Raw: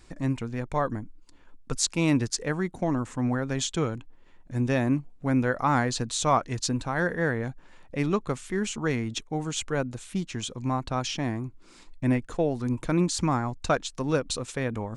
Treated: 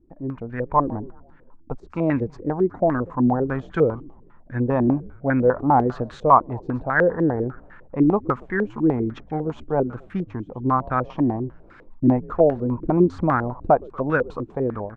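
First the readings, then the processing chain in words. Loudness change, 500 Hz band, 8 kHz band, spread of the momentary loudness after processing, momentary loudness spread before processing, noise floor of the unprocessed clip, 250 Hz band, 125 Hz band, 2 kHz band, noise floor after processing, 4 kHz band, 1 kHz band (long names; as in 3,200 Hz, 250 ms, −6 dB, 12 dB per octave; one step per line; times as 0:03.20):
+6.0 dB, +8.0 dB, below −30 dB, 11 LU, 8 LU, −52 dBFS, +5.5 dB, +2.5 dB, +3.5 dB, −49 dBFS, below −15 dB, +8.5 dB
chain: automatic gain control gain up to 9.5 dB
echo with shifted repeats 119 ms, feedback 52%, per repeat −85 Hz, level −21.5 dB
low-pass on a step sequencer 10 Hz 320–1,600 Hz
level −6.5 dB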